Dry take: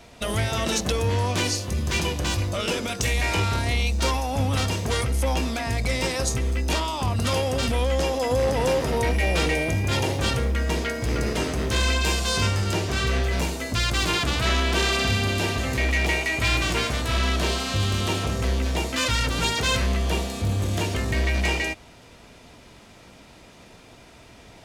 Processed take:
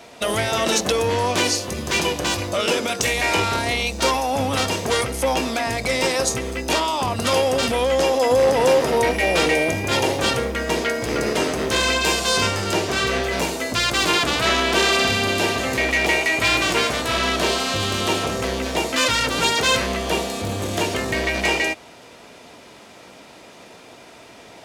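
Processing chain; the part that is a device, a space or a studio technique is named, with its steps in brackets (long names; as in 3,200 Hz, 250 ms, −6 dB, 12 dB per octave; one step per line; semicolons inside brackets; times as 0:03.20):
filter by subtraction (in parallel: low-pass filter 470 Hz 12 dB per octave + polarity inversion)
on the sum: level +5 dB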